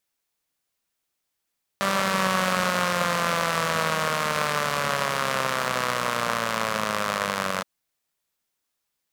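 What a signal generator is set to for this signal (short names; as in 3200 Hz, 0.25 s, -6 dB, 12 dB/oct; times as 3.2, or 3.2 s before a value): four-cylinder engine model, changing speed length 5.82 s, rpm 5900, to 2800, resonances 200/570/1100 Hz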